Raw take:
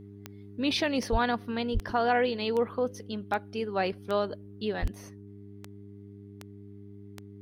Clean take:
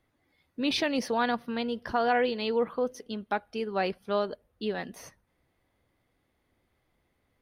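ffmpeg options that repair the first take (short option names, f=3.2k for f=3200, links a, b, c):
-filter_complex "[0:a]adeclick=t=4,bandreject=f=100.8:t=h:w=4,bandreject=f=201.6:t=h:w=4,bandreject=f=302.4:t=h:w=4,bandreject=f=403.2:t=h:w=4,asplit=3[a][b][c];[a]afade=t=out:st=1.11:d=0.02[d];[b]highpass=f=140:w=0.5412,highpass=f=140:w=1.3066,afade=t=in:st=1.11:d=0.02,afade=t=out:st=1.23:d=0.02[e];[c]afade=t=in:st=1.23:d=0.02[f];[d][e][f]amix=inputs=3:normalize=0,asplit=3[g][h][i];[g]afade=t=out:st=1.73:d=0.02[j];[h]highpass=f=140:w=0.5412,highpass=f=140:w=1.3066,afade=t=in:st=1.73:d=0.02,afade=t=out:st=1.85:d=0.02[k];[i]afade=t=in:st=1.85:d=0.02[l];[j][k][l]amix=inputs=3:normalize=0,asplit=3[m][n][o];[m]afade=t=out:st=4.81:d=0.02[p];[n]highpass=f=140:w=0.5412,highpass=f=140:w=1.3066,afade=t=in:st=4.81:d=0.02,afade=t=out:st=4.93:d=0.02[q];[o]afade=t=in:st=4.93:d=0.02[r];[p][q][r]amix=inputs=3:normalize=0,asetnsamples=n=441:p=0,asendcmd='4.94 volume volume 3.5dB',volume=0dB"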